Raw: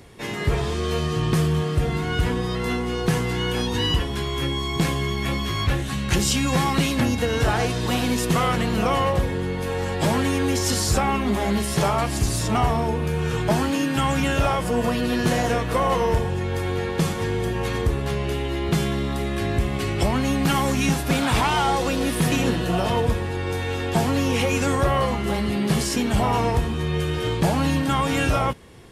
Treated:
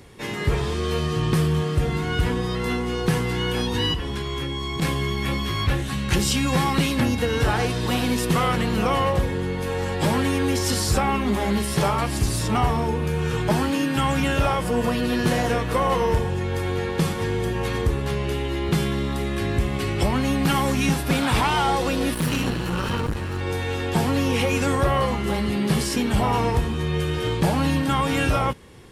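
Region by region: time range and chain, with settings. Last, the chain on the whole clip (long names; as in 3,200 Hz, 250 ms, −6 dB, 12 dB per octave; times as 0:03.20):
0:03.93–0:04.82: downward compressor, threshold −23 dBFS + high-shelf EQ 11,000 Hz −7.5 dB
0:22.14–0:23.41: lower of the sound and its delayed copy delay 0.71 ms + saturating transformer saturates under 220 Hz
whole clip: notch filter 670 Hz, Q 12; dynamic equaliser 6,700 Hz, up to −4 dB, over −46 dBFS, Q 3.5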